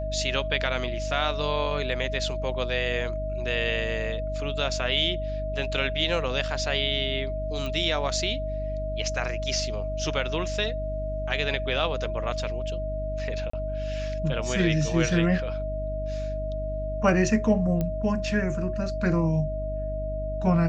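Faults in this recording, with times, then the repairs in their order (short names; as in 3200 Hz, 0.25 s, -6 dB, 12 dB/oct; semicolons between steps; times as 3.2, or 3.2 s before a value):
hum 50 Hz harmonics 6 -32 dBFS
tone 630 Hz -31 dBFS
7.66 pop
13.5–13.53 gap 34 ms
17.81 pop -16 dBFS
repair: de-click; de-hum 50 Hz, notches 6; notch 630 Hz, Q 30; interpolate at 13.5, 34 ms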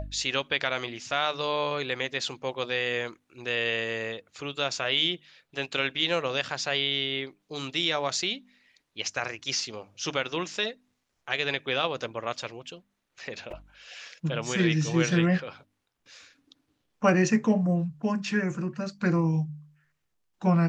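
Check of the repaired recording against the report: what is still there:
none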